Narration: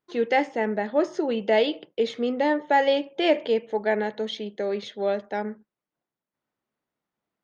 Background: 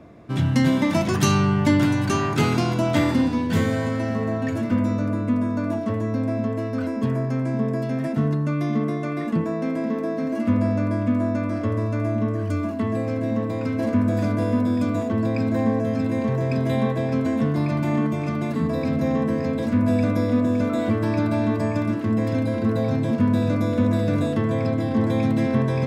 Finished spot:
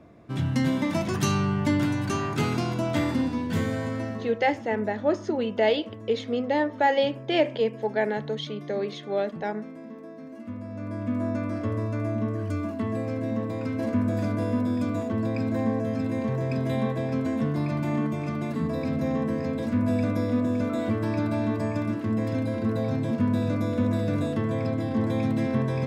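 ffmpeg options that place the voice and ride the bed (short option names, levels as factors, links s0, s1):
-filter_complex "[0:a]adelay=4100,volume=0.841[s0];[1:a]volume=2.11,afade=t=out:st=4.02:d=0.31:silence=0.281838,afade=t=in:st=10.68:d=0.62:silence=0.251189[s1];[s0][s1]amix=inputs=2:normalize=0"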